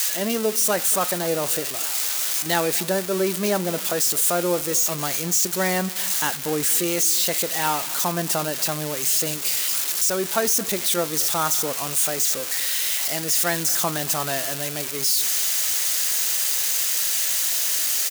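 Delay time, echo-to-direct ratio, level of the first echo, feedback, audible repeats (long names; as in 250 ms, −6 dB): 232 ms, −19.0 dB, −19.5 dB, 32%, 2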